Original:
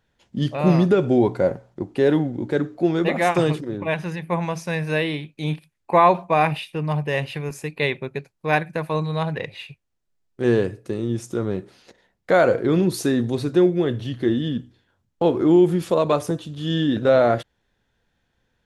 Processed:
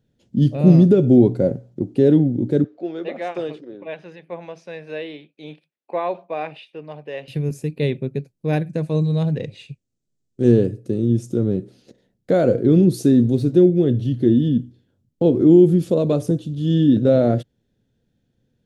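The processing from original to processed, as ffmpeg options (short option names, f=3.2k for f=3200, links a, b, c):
-filter_complex "[0:a]asettb=1/sr,asplit=3[a][b][c];[a]atrim=end=2.644[d];[b]atrim=start=2.64:end=7.28,asetpts=PTS-STARTPTS,afade=t=in:d=0.004:c=qsin,afade=t=out:st=4.636:d=0.004:c=qsin,highpass=650,lowpass=3.2k[e];[c]atrim=start=7.276[f];[d][e]acrossfade=d=0.004:c1=hsin:c2=qsin[g];[g][f]acrossfade=d=0.004:c1=qsin:c2=hsin,asettb=1/sr,asplit=3[h][i][j];[h]atrim=end=8.694[k];[i]atrim=start=8.69:end=10.52,asetpts=PTS-STARTPTS,afade=t=in:d=0.004:c=qsin,afade=t=out:st=1.826:d=0.004:c=qsin,lowpass=f=7.6k:t=q:w=2.1[l];[j]atrim=start=10.516[m];[k][l]acrossfade=d=0.004:c1=hsin:c2=qsin[n];[n][m]acrossfade=d=0.004:c1=qsin:c2=hsin,asettb=1/sr,asplit=3[o][p][q];[o]atrim=end=13.134[r];[p]atrim=start=13.13:end=13.58,asetpts=PTS-STARTPTS,afade=t=in:d=0.004:c=qsin,afade=t=out:st=0.446:d=0.004:c=qsin,aeval=exprs='sgn(val(0))*max(abs(val(0))-0.00473,0)':c=same[s];[q]atrim=start=13.576[t];[r][s]acrossfade=d=0.004:c1=hsin:c2=qsin[u];[u][t]acrossfade=d=0.004:c1=qsin:c2=hsin,equalizer=f=125:t=o:w=1:g=10,equalizer=f=250:t=o:w=1:g=9,equalizer=f=500:t=o:w=1:g=5,equalizer=f=1k:t=o:w=1:g=-11,equalizer=f=2k:t=o:w=1:g=-6,volume=-3.5dB"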